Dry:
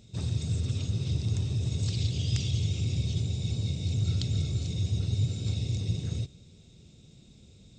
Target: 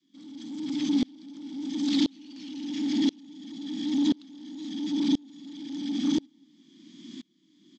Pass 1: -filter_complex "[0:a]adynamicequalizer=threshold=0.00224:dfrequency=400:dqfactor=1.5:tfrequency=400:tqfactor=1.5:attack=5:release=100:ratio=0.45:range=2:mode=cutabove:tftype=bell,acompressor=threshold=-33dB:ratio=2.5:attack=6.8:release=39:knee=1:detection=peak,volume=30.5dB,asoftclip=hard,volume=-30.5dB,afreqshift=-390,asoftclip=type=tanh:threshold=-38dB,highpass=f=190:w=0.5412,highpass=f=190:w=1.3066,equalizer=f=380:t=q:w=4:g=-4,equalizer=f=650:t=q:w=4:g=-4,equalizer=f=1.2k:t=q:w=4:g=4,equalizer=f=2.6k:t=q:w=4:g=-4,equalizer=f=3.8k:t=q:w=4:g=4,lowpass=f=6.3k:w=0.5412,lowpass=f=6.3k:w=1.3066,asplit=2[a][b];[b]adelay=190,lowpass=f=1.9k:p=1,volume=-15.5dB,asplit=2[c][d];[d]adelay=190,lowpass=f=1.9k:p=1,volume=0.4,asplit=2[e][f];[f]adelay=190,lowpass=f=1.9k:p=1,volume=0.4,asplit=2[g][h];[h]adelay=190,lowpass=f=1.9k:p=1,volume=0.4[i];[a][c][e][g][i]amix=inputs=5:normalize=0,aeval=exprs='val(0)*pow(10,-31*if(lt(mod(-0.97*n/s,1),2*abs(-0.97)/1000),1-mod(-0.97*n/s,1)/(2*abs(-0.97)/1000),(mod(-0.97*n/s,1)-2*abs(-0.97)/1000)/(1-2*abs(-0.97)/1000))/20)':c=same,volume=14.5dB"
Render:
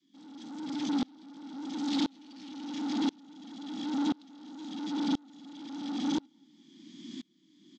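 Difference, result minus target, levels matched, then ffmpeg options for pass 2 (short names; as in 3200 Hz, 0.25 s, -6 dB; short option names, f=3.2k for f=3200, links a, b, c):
soft clip: distortion +14 dB
-filter_complex "[0:a]adynamicequalizer=threshold=0.00224:dfrequency=400:dqfactor=1.5:tfrequency=400:tqfactor=1.5:attack=5:release=100:ratio=0.45:range=2:mode=cutabove:tftype=bell,acompressor=threshold=-33dB:ratio=2.5:attack=6.8:release=39:knee=1:detection=peak,volume=30.5dB,asoftclip=hard,volume=-30.5dB,afreqshift=-390,asoftclip=type=tanh:threshold=-27dB,highpass=f=190:w=0.5412,highpass=f=190:w=1.3066,equalizer=f=380:t=q:w=4:g=-4,equalizer=f=650:t=q:w=4:g=-4,equalizer=f=1.2k:t=q:w=4:g=4,equalizer=f=2.6k:t=q:w=4:g=-4,equalizer=f=3.8k:t=q:w=4:g=4,lowpass=f=6.3k:w=0.5412,lowpass=f=6.3k:w=1.3066,asplit=2[a][b];[b]adelay=190,lowpass=f=1.9k:p=1,volume=-15.5dB,asplit=2[c][d];[d]adelay=190,lowpass=f=1.9k:p=1,volume=0.4,asplit=2[e][f];[f]adelay=190,lowpass=f=1.9k:p=1,volume=0.4,asplit=2[g][h];[h]adelay=190,lowpass=f=1.9k:p=1,volume=0.4[i];[a][c][e][g][i]amix=inputs=5:normalize=0,aeval=exprs='val(0)*pow(10,-31*if(lt(mod(-0.97*n/s,1),2*abs(-0.97)/1000),1-mod(-0.97*n/s,1)/(2*abs(-0.97)/1000),(mod(-0.97*n/s,1)-2*abs(-0.97)/1000)/(1-2*abs(-0.97)/1000))/20)':c=same,volume=14.5dB"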